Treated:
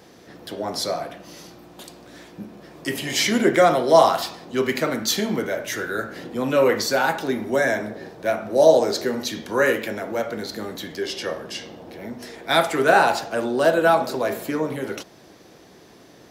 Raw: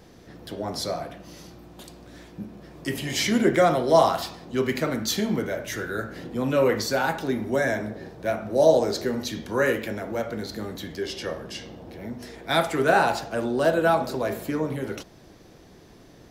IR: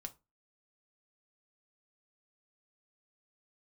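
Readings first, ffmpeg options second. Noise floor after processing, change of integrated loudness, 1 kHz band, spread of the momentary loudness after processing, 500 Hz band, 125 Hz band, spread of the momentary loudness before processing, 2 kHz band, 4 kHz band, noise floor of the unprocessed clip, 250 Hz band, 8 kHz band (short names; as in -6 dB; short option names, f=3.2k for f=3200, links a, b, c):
-49 dBFS, +3.5 dB, +4.0 dB, 19 LU, +3.5 dB, -2.5 dB, 18 LU, +4.5 dB, +4.5 dB, -50 dBFS, +1.0 dB, +4.5 dB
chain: -af "highpass=f=280:p=1,volume=4.5dB"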